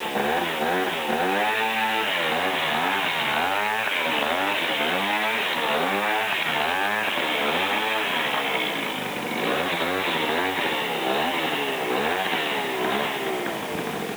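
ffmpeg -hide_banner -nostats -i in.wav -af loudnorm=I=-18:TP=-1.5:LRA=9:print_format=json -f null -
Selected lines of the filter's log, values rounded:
"input_i" : "-23.6",
"input_tp" : "-9.5",
"input_lra" : "2.6",
"input_thresh" : "-33.6",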